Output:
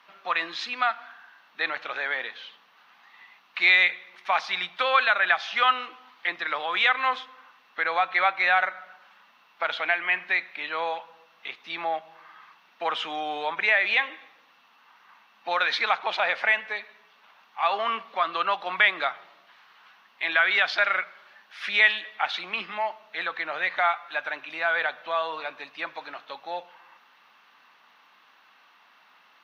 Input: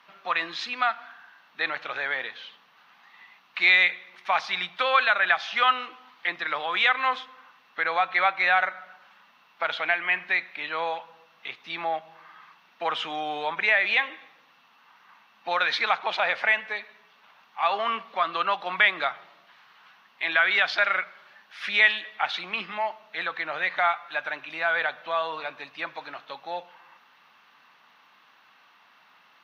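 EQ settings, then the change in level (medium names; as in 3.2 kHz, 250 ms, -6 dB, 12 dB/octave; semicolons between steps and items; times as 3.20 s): high-pass 200 Hz 12 dB/octave; 0.0 dB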